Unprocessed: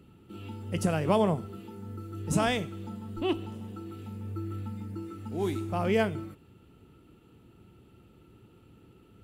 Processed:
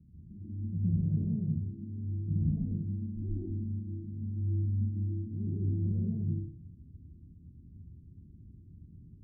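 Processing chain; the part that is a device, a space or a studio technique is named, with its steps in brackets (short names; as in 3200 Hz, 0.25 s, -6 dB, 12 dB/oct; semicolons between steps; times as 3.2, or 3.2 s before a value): club heard from the street (limiter -23 dBFS, peak gain reduction 10.5 dB; LPF 200 Hz 24 dB/oct; reverb RT60 0.70 s, pre-delay 0.105 s, DRR -6 dB)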